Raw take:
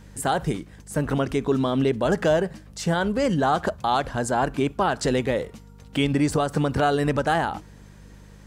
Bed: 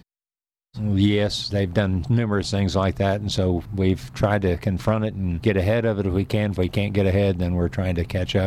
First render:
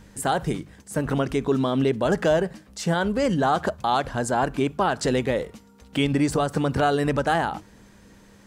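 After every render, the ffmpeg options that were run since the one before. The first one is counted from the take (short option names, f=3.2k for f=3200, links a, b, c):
-af "bandreject=f=50:t=h:w=4,bandreject=f=100:t=h:w=4,bandreject=f=150:t=h:w=4"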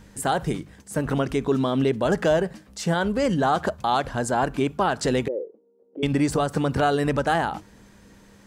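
-filter_complex "[0:a]asettb=1/sr,asplit=3[a][b][c];[a]atrim=end=5.284[d];[b]atrim=start=5.28:end=6.03,asetpts=PTS-STARTPTS,afade=t=in:d=0.004:c=qsin,afade=t=out:st=0.746:d=0.004:c=qsin,asuperpass=centerf=420:order=4:qfactor=2.2[e];[c]atrim=start=6.026[f];[d][e]acrossfade=d=0.004:c1=hsin:c2=qsin[g];[g][f]acrossfade=d=0.004:c1=qsin:c2=hsin"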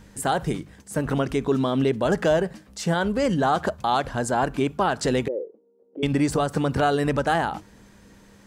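-af anull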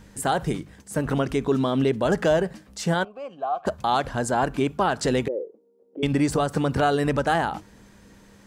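-filter_complex "[0:a]asplit=3[a][b][c];[a]afade=t=out:st=3.03:d=0.02[d];[b]asplit=3[e][f][g];[e]bandpass=f=730:t=q:w=8,volume=0dB[h];[f]bandpass=f=1.09k:t=q:w=8,volume=-6dB[i];[g]bandpass=f=2.44k:t=q:w=8,volume=-9dB[j];[h][i][j]amix=inputs=3:normalize=0,afade=t=in:st=3.03:d=0.02,afade=t=out:st=3.65:d=0.02[k];[c]afade=t=in:st=3.65:d=0.02[l];[d][k][l]amix=inputs=3:normalize=0"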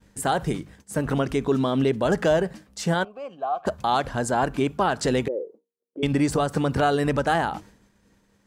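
-af "agate=range=-33dB:threshold=-42dB:ratio=3:detection=peak"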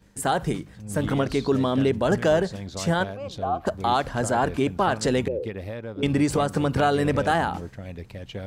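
-filter_complex "[1:a]volume=-14dB[a];[0:a][a]amix=inputs=2:normalize=0"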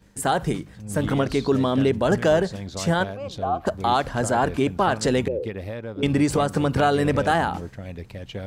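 -af "volume=1.5dB"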